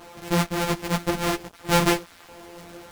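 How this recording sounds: a buzz of ramps at a fixed pitch in blocks of 256 samples; random-step tremolo; a quantiser's noise floor 8-bit, dither none; a shimmering, thickened sound

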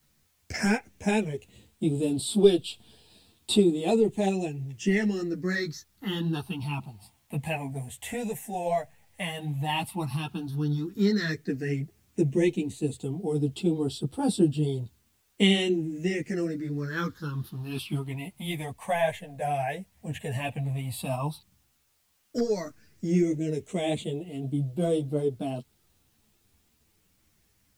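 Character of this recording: phasing stages 6, 0.089 Hz, lowest notch 330–1800 Hz; a quantiser's noise floor 12-bit, dither triangular; a shimmering, thickened sound

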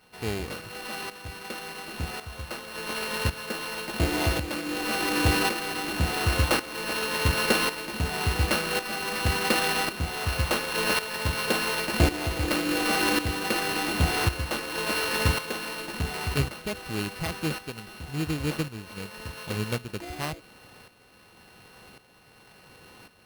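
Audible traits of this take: a buzz of ramps at a fixed pitch in blocks of 16 samples; tremolo saw up 0.91 Hz, depth 70%; aliases and images of a low sample rate 7000 Hz, jitter 0%

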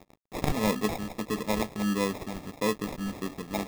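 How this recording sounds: a quantiser's noise floor 8-bit, dither none; phasing stages 2, 1.6 Hz, lowest notch 460–1500 Hz; aliases and images of a low sample rate 1500 Hz, jitter 0%

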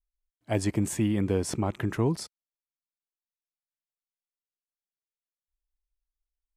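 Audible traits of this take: noise floor -97 dBFS; spectral tilt -5.5 dB/oct

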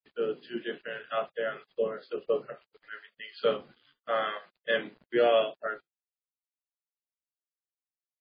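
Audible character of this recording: tremolo saw up 1.6 Hz, depth 45%; a quantiser's noise floor 10-bit, dither none; MP3

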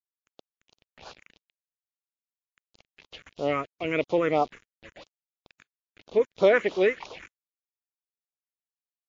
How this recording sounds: a quantiser's noise floor 8-bit, dither none; phasing stages 4, 3 Hz, lowest notch 720–1900 Hz; MP3

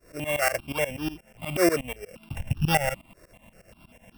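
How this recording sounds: a buzz of ramps at a fixed pitch in blocks of 16 samples; tremolo saw up 8.3 Hz, depth 95%; notches that jump at a steady rate 5.1 Hz 850–2100 Hz

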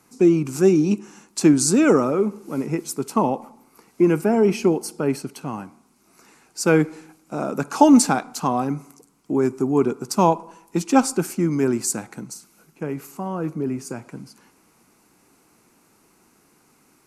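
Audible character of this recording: noise floor -60 dBFS; spectral tilt -5.5 dB/oct

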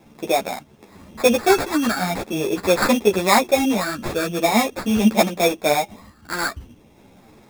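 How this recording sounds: phasing stages 12, 0.43 Hz, lowest notch 790–5000 Hz; aliases and images of a low sample rate 3000 Hz, jitter 0%; a shimmering, thickened sound

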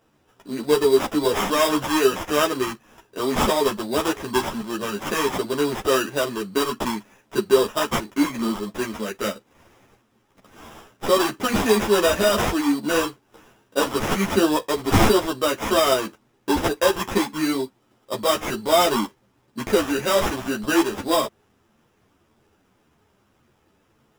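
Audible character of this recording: aliases and images of a low sample rate 4300 Hz, jitter 0%; a shimmering, thickened sound

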